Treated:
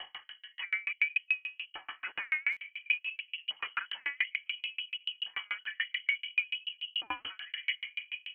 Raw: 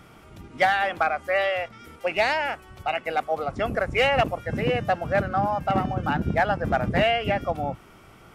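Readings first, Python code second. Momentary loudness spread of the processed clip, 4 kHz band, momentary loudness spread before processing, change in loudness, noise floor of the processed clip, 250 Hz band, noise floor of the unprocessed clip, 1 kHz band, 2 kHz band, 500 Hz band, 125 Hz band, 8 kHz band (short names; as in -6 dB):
9 LU, -1.5 dB, 8 LU, -9.5 dB, -67 dBFS, under -30 dB, -50 dBFS, -24.0 dB, -5.0 dB, under -40 dB, under -40 dB, n/a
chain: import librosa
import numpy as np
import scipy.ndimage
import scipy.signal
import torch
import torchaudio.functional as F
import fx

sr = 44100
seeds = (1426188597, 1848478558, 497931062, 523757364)

y = fx.low_shelf(x, sr, hz=410.0, db=6.5)
y = fx.level_steps(y, sr, step_db=16)
y = fx.tube_stage(y, sr, drive_db=31.0, bias=0.55)
y = fx.graphic_eq_15(y, sr, hz=(160, 400, 1000), db=(11, -10, 9))
y = fx.echo_diffused(y, sr, ms=954, feedback_pct=46, wet_db=-14.0)
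y = fx.rider(y, sr, range_db=5, speed_s=0.5)
y = fx.filter_lfo_lowpass(y, sr, shape='saw_down', hz=0.57, low_hz=310.0, high_hz=2400.0, q=6.4)
y = scipy.signal.sosfilt(scipy.signal.butter(2, 86.0, 'highpass', fs=sr, output='sos'), y)
y = fx.freq_invert(y, sr, carrier_hz=3100)
y = fx.buffer_glitch(y, sr, at_s=(2.52,), block=256, repeats=7)
y = fx.tremolo_decay(y, sr, direction='decaying', hz=6.9, depth_db=39)
y = y * librosa.db_to_amplitude(2.0)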